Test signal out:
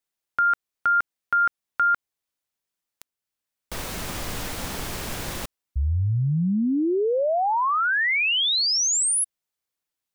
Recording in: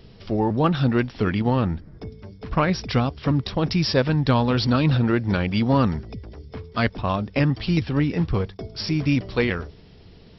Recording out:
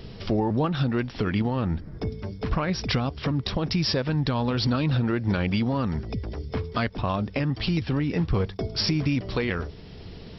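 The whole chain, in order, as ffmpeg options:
-af "acompressor=threshold=0.0794:ratio=4,alimiter=limit=0.0841:level=0:latency=1:release=492,volume=2.11"

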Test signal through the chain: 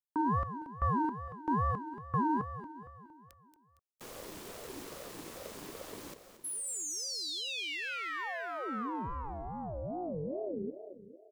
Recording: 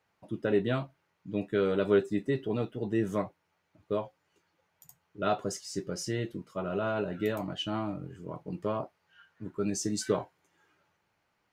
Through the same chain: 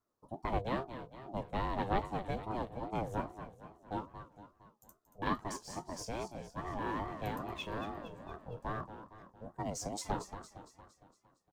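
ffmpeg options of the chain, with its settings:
-filter_complex "[0:a]aeval=exprs='0.237*(cos(1*acos(clip(val(0)/0.237,-1,1)))-cos(1*PI/2))+0.0841*(cos(2*acos(clip(val(0)/0.237,-1,1)))-cos(2*PI/2))':c=same,acrossover=split=130|1000|4500[s0][s1][s2][s3];[s1]aecho=1:1:1.4:0.34[s4];[s2]aeval=exprs='sgn(val(0))*max(abs(val(0))-0.0015,0)':c=same[s5];[s3]acrusher=bits=5:mode=log:mix=0:aa=0.000001[s6];[s0][s4][s5][s6]amix=inputs=4:normalize=0,aecho=1:1:230|460|690|920|1150|1380:0.282|0.149|0.0792|0.042|0.0222|0.0118,aeval=exprs='val(0)*sin(2*PI*420*n/s+420*0.3/2.4*sin(2*PI*2.4*n/s))':c=same,volume=0.631"

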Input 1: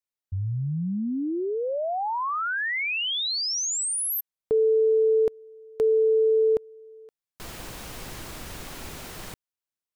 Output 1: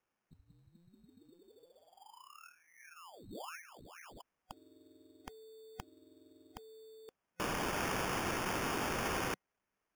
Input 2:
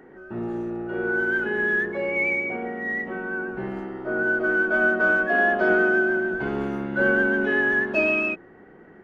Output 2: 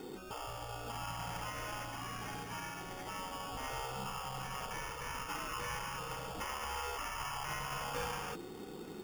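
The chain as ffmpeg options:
-af "afftfilt=real='re*lt(hypot(re,im),0.0562)':imag='im*lt(hypot(re,im),0.0562)':win_size=1024:overlap=0.75,superequalizer=8b=0.447:11b=0.282:14b=3.16,acrusher=samples=11:mix=1:aa=0.000001,volume=1.33"

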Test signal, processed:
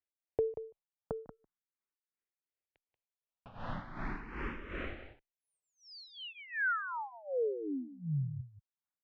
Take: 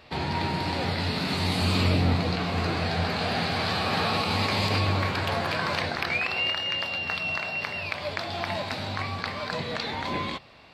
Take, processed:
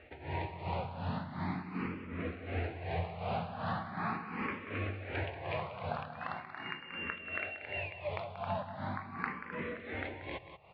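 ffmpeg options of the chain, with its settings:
-filter_complex "[0:a]lowpass=f=2500:w=0.5412,lowpass=f=2500:w=1.3066,acompressor=threshold=0.0398:ratio=6,tremolo=f=2.7:d=0.88,aecho=1:1:184:0.282,asplit=2[s0][s1];[s1]afreqshift=0.4[s2];[s0][s2]amix=inputs=2:normalize=1"

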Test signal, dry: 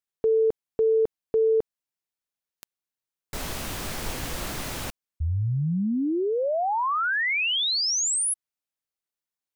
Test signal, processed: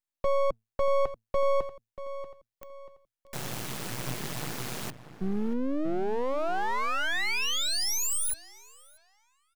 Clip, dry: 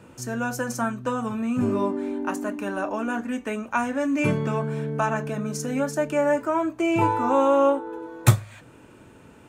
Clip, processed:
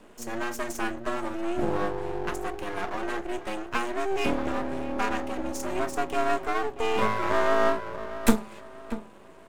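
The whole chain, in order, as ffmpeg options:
-filter_complex "[0:a]afreqshift=110,asplit=2[s0][s1];[s1]adelay=636,lowpass=f=1500:p=1,volume=0.237,asplit=2[s2][s3];[s3]adelay=636,lowpass=f=1500:p=1,volume=0.39,asplit=2[s4][s5];[s5]adelay=636,lowpass=f=1500:p=1,volume=0.39,asplit=2[s6][s7];[s7]adelay=636,lowpass=f=1500:p=1,volume=0.39[s8];[s0][s2][s4][s6][s8]amix=inputs=5:normalize=0,aeval=exprs='max(val(0),0)':c=same"

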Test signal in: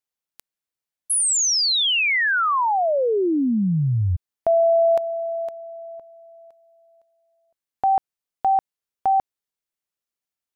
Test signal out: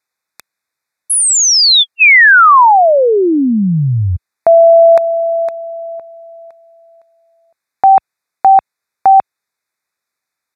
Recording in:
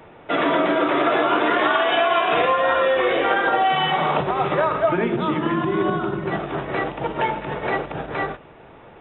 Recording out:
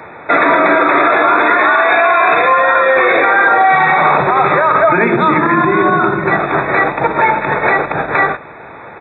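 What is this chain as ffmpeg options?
-af "highpass=67,aresample=32000,aresample=44100,asuperstop=centerf=3000:order=20:qfactor=3.3,equalizer=f=1700:t=o:w=2.5:g=10,alimiter=level_in=2.66:limit=0.891:release=50:level=0:latency=1,volume=0.891"

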